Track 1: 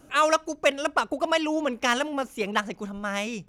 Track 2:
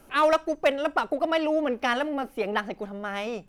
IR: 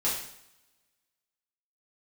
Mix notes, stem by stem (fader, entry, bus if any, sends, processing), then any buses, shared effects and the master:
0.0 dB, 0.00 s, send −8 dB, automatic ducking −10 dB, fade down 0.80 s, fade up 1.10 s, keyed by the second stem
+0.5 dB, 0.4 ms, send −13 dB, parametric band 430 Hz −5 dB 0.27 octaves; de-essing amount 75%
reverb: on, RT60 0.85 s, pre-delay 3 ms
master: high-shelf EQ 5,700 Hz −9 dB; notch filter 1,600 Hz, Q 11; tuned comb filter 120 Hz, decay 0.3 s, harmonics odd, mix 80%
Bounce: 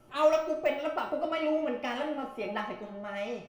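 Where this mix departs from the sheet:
stem 1: send off
reverb return +6.5 dB

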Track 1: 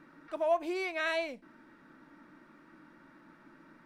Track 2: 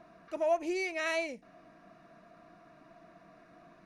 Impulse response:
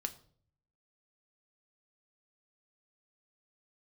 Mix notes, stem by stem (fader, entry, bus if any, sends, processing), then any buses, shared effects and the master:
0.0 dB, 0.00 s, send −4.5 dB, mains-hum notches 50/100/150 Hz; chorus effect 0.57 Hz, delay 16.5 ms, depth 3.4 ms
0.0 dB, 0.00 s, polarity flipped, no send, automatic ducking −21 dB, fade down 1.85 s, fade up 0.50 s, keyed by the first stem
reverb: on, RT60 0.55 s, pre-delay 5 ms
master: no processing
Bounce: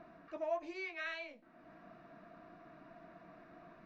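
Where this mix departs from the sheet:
stem 1 0.0 dB → −10.0 dB
master: extra Gaussian smoothing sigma 1.8 samples

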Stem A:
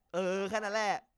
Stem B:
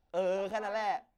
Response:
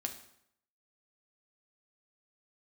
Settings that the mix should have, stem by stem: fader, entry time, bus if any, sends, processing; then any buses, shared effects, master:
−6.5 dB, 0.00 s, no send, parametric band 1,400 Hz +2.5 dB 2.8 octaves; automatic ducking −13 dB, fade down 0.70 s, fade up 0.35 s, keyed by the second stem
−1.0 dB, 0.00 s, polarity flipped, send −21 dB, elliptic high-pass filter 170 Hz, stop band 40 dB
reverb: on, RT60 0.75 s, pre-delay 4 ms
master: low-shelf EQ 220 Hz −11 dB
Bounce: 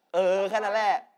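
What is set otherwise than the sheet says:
stem A −6.5 dB → −13.0 dB
stem B −1.0 dB → +9.5 dB

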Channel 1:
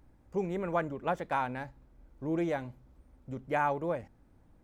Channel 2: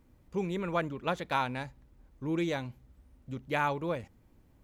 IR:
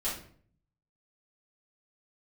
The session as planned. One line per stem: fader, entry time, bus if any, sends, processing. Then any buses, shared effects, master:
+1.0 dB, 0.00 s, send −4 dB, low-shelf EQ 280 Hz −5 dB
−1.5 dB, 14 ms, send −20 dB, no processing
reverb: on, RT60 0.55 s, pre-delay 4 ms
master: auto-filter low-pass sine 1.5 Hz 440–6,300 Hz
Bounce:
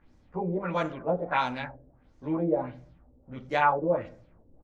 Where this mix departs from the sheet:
stem 1 +1.0 dB → −5.5 dB
stem 2: polarity flipped

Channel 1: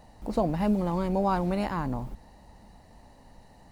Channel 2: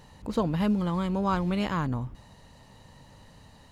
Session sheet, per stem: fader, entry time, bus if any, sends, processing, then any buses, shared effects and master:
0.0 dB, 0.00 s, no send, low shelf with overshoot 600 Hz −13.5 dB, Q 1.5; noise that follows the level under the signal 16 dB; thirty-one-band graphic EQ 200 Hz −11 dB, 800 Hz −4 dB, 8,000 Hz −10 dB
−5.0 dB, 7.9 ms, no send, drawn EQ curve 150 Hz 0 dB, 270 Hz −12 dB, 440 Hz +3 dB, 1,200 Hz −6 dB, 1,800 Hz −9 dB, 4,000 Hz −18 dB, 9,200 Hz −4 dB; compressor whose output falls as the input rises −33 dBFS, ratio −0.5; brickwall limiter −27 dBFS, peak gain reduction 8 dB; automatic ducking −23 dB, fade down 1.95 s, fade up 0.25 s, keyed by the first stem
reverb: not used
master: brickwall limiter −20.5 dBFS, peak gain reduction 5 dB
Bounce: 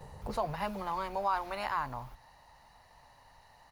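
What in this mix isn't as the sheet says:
stem 1: missing noise that follows the level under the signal 16 dB
stem 2 −5.0 dB → +2.0 dB

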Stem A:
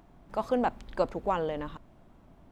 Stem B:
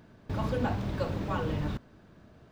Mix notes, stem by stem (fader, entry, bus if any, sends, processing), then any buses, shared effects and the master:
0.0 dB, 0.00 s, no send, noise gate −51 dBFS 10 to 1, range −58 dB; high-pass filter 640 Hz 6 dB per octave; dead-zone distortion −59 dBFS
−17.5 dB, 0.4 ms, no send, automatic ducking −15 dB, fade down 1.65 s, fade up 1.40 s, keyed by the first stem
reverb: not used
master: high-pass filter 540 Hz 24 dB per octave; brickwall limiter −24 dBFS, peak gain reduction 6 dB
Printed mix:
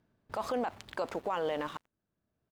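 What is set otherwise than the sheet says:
stem A 0.0 dB → +9.0 dB
master: missing high-pass filter 540 Hz 24 dB per octave

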